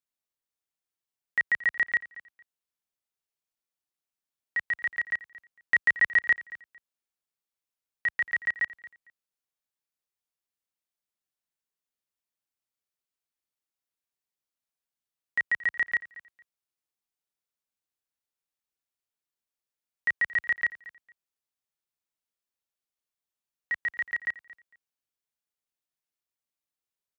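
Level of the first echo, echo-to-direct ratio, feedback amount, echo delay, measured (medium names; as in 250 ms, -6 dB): -18.5 dB, -18.5 dB, 21%, 227 ms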